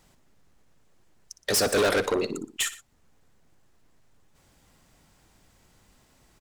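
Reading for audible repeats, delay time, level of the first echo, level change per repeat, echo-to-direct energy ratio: 2, 60 ms, -15.0 dB, -5.0 dB, -14.0 dB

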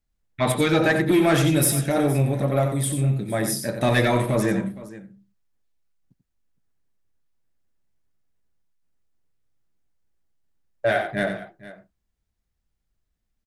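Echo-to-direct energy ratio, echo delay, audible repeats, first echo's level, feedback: -7.5 dB, 90 ms, 2, -8.0 dB, no regular repeats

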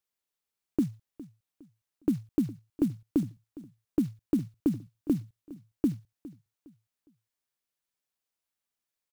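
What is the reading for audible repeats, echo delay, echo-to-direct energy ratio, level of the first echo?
2, 410 ms, -18.0 dB, -18.5 dB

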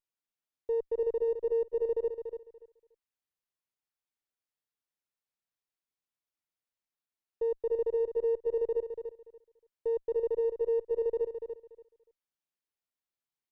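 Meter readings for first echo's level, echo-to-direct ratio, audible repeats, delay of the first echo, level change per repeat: -8.0 dB, -8.0 dB, 2, 288 ms, -14.5 dB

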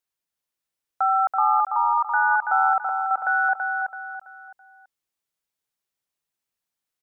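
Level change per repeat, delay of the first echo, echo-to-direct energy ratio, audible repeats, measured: -9.0 dB, 331 ms, -4.5 dB, 4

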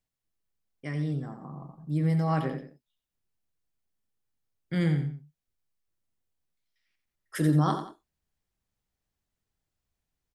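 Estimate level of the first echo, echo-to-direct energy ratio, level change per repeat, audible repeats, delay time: -9.0 dB, -8.5 dB, -9.5 dB, 2, 88 ms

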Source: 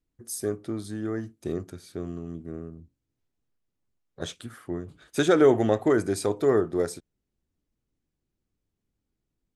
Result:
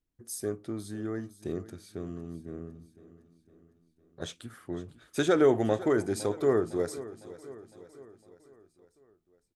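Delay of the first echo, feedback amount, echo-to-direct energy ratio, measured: 507 ms, 55%, -15.5 dB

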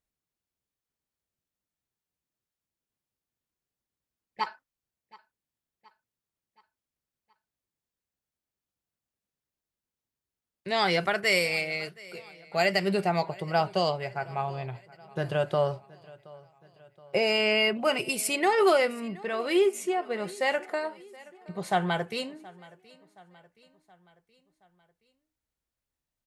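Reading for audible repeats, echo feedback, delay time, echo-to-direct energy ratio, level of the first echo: 3, 53%, 723 ms, -21.0 dB, -22.5 dB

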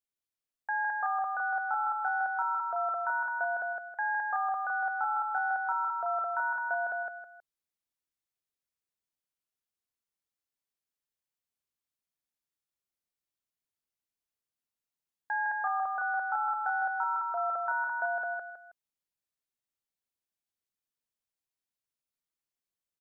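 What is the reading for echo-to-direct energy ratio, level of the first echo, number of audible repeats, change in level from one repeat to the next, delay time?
-2.5 dB, -3.0 dB, 3, -9.5 dB, 160 ms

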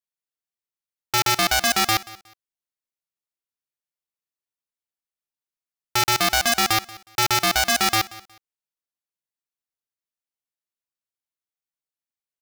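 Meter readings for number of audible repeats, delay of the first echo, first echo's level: 2, 182 ms, -20.0 dB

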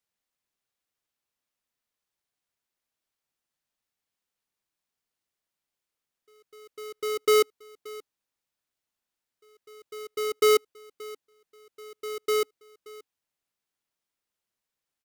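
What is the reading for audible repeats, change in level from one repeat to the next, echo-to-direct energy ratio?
1, no regular repeats, -20.5 dB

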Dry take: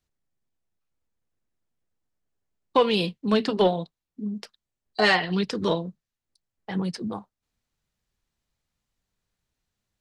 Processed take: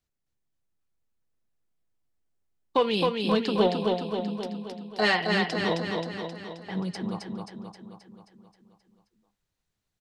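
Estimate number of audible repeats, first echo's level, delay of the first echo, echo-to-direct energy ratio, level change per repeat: 7, -3.5 dB, 265 ms, -1.5 dB, -4.5 dB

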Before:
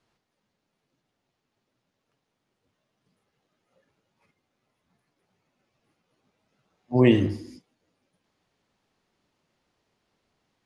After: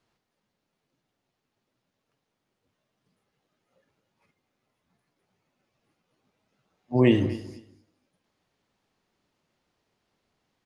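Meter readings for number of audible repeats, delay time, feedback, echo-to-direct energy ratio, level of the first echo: 2, 241 ms, 19%, -17.5 dB, -17.5 dB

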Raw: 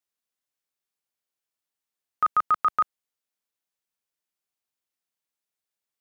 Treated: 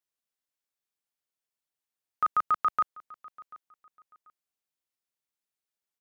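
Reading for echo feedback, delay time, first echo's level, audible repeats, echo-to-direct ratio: 25%, 738 ms, -22.0 dB, 2, -21.5 dB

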